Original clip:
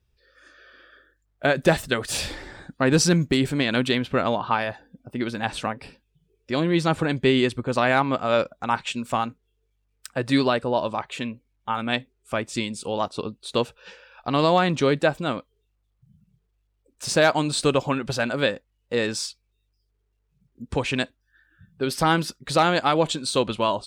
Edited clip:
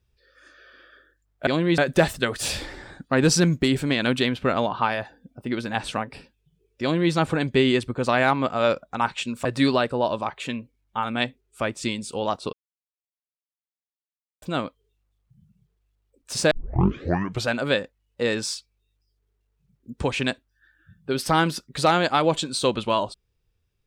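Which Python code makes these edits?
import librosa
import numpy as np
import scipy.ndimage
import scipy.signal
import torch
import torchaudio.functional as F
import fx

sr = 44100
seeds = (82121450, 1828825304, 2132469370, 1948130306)

y = fx.edit(x, sr, fx.duplicate(start_s=6.51, length_s=0.31, to_s=1.47),
    fx.cut(start_s=9.14, length_s=1.03),
    fx.silence(start_s=13.25, length_s=1.89),
    fx.tape_start(start_s=17.23, length_s=0.97), tone=tone)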